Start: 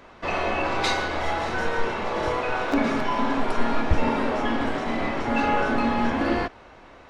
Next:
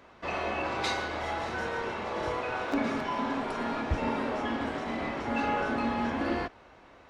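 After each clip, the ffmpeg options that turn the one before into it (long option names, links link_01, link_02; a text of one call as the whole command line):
ffmpeg -i in.wav -af "highpass=41,volume=-6.5dB" out.wav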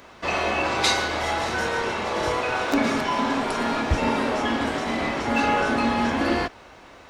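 ffmpeg -i in.wav -af "highshelf=frequency=4300:gain=11.5,volume=7dB" out.wav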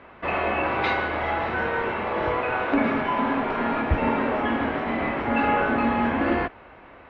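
ffmpeg -i in.wav -af "lowpass=frequency=2600:width=0.5412,lowpass=frequency=2600:width=1.3066" out.wav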